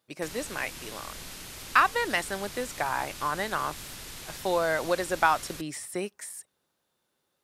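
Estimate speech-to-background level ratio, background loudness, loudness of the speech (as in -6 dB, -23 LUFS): 11.5 dB, -40.5 LUFS, -29.0 LUFS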